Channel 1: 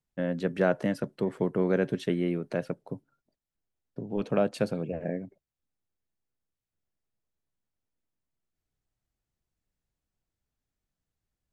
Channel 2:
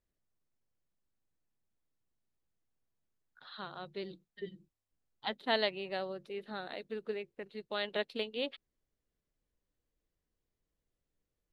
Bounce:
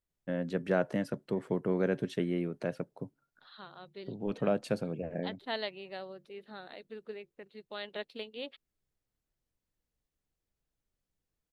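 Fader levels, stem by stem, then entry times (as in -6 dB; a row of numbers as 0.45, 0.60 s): -4.0, -5.0 dB; 0.10, 0.00 s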